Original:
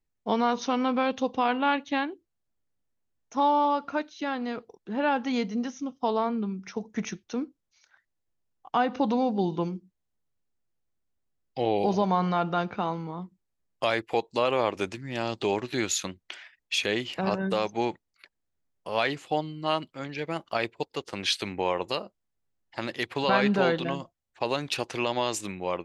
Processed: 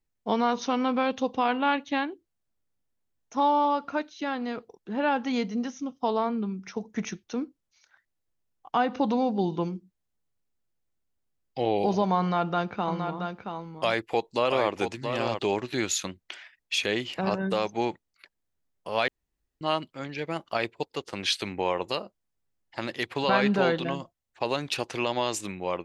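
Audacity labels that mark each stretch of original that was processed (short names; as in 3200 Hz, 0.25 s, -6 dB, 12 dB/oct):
12.200000	15.390000	echo 0.676 s -6.5 dB
19.080000	19.610000	room tone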